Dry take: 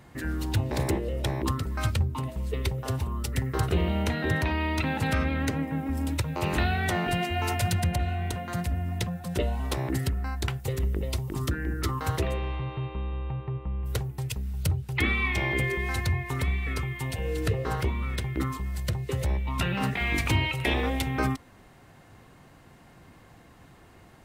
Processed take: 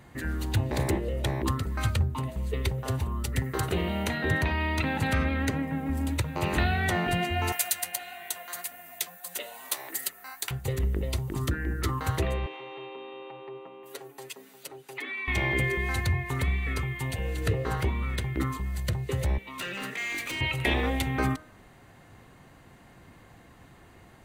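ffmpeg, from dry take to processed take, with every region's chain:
-filter_complex "[0:a]asettb=1/sr,asplit=3[a][b][c];[a]atrim=end=3.434[d];[b]atrim=start=3.43:end=4.18,asetpts=PTS-STARTPTS,afade=t=in:d=0.004:c=qsin,afade=t=out:st=0.746:d=0.004:c=qsin,highpass=f=140:p=1,highshelf=f=6.3k:g=5[e];[c]atrim=start=4.176[f];[d][e]acrossfade=d=0.004:c1=hsin:c2=qsin[g];[g][f]acrossfade=d=0.004:c1=qsin:c2=hsin,asettb=1/sr,asplit=3[h][i][j];[h]atrim=end=7.524[k];[i]atrim=start=7.52:end=10.51,asetpts=PTS-STARTPTS,afade=t=in:d=0.004:c=qsin,afade=t=out:st=2.986:d=0.004:c=qsin,highpass=690,aemphasis=mode=production:type=75fm,flanger=delay=3.5:depth=9.3:regen=52:speed=1.6:shape=triangular[l];[j]atrim=start=10.506[m];[k][l]acrossfade=d=0.004:c1=hsin:c2=qsin[n];[n][m]acrossfade=d=0.004:c1=qsin:c2=hsin,asettb=1/sr,asplit=3[o][p][q];[o]atrim=end=12.464[r];[p]atrim=start=12.46:end=15.28,asetpts=PTS-STARTPTS,afade=t=in:d=0.004:c=qsin,afade=t=out:st=2.816:d=0.004:c=qsin,highpass=f=310:w=0.5412,highpass=f=310:w=1.3066,acompressor=threshold=-40dB:ratio=3:attack=3.2:release=140:knee=1:detection=peak,aecho=1:1:7.3:0.83,atrim=end_sample=124362[s];[q]atrim=start=15.276[t];[r][s]acrossfade=d=0.004:c1=hsin:c2=qsin[u];[u][t]acrossfade=d=0.004:c1=qsin:c2=hsin,asettb=1/sr,asplit=3[v][w][x];[v]atrim=end=19.384[y];[w]atrim=start=19.38:end=20.41,asetpts=PTS-STARTPTS,afade=t=in:d=0.004:c=qsin,afade=t=out:st=1.026:d=0.004:c=qsin,highpass=370,equalizer=f=830:t=o:w=0.68:g=-11,volume=31dB,asoftclip=hard,volume=-31dB[z];[x]atrim=start=20.406[aa];[y][z]acrossfade=d=0.004:c1=hsin:c2=qsin[ab];[ab][aa]acrossfade=d=0.004:c1=qsin:c2=hsin,equalizer=f=1.9k:w=5.6:g=2.5,bandreject=f=5.3k:w=10,bandreject=f=155.3:t=h:w=4,bandreject=f=310.6:t=h:w=4,bandreject=f=465.9:t=h:w=4,bandreject=f=621.2:t=h:w=4,bandreject=f=776.5:t=h:w=4,bandreject=f=931.8:t=h:w=4,bandreject=f=1.0871k:t=h:w=4,bandreject=f=1.2424k:t=h:w=4,bandreject=f=1.3977k:t=h:w=4,bandreject=f=1.553k:t=h:w=4,bandreject=f=1.7083k:t=h:w=4"

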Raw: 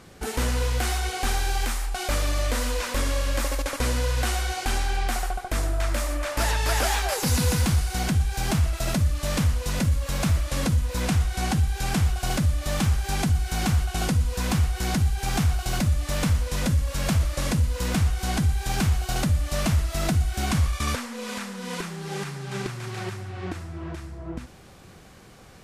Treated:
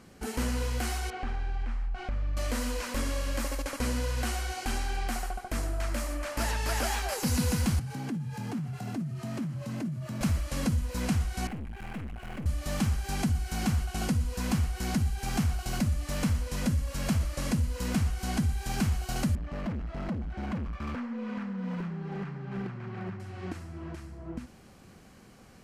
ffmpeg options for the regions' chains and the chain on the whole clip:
-filter_complex "[0:a]asettb=1/sr,asplit=3[a][b][c];[a]atrim=end=1.104[d];[b]atrim=start=1.1:end=2.37,asetpts=PTS-STARTPTS,afade=t=in:d=0.004:c=qsin,afade=t=out:st=1.266:d=0.004:c=qsin,lowpass=2.3k,asubboost=boost=9.5:cutoff=150,acompressor=threshold=-22dB:ratio=6:attack=3.2:release=140:knee=1:detection=peak[e];[c]atrim=start=2.366[f];[d][e]acrossfade=d=0.004:c1=hsin:c2=qsin[g];[g][f]acrossfade=d=0.004:c1=qsin:c2=hsin,asettb=1/sr,asplit=3[h][i][j];[h]atrim=end=7.794[k];[i]atrim=start=7.79:end=10.21,asetpts=PTS-STARTPTS,afade=t=in:d=0.004:c=qsin,afade=t=out:st=2.416:d=0.004:c=qsin,highshelf=f=2.7k:g=-9,acompressor=threshold=-27dB:ratio=6:attack=3.2:release=140:knee=1:detection=peak,afreqshift=75[l];[j]atrim=start=10.206[m];[k][l]acrossfade=d=0.004:c1=hsin:c2=qsin[n];[n][m]acrossfade=d=0.004:c1=qsin:c2=hsin,asettb=1/sr,asplit=3[o][p][q];[o]atrim=end=11.474[r];[p]atrim=start=11.47:end=12.46,asetpts=PTS-STARTPTS,afade=t=in:d=0.004:c=qsin,afade=t=out:st=0.986:d=0.004:c=qsin,aeval=exprs='(tanh(35.5*val(0)+0.6)-tanh(0.6))/35.5':c=same,highshelf=f=3.5k:t=q:w=1.5:g=-12[s];[q]atrim=start=12.456[t];[r][s]acrossfade=d=0.004:c1=hsin:c2=qsin[u];[u][t]acrossfade=d=0.004:c1=qsin:c2=hsin,asettb=1/sr,asplit=3[v][w][x];[v]atrim=end=19.354[y];[w]atrim=start=19.35:end=23.2,asetpts=PTS-STARTPTS,afade=t=in:d=0.004:c=qsin,afade=t=out:st=3.846:d=0.004:c=qsin,lowpass=1.9k,equalizer=f=180:w=5.1:g=8.5,asoftclip=type=hard:threshold=-26.5dB[z];[x]atrim=start=23.196[aa];[y][z]acrossfade=d=0.004:c1=hsin:c2=qsin[ab];[ab][aa]acrossfade=d=0.004:c1=qsin:c2=hsin,equalizer=f=230:t=o:w=0.52:g=7.5,bandreject=f=3.6k:w=12,volume=-6.5dB"

